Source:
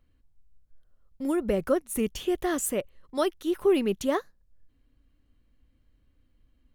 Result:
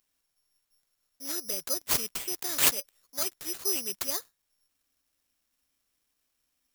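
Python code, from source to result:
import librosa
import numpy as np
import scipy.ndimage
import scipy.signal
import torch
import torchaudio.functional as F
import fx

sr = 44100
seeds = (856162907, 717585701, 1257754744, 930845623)

y = fx.riaa(x, sr, side='recording')
y = (np.kron(y[::8], np.eye(8)[0]) * 8)[:len(y)]
y = y * 10.0 ** (-13.0 / 20.0)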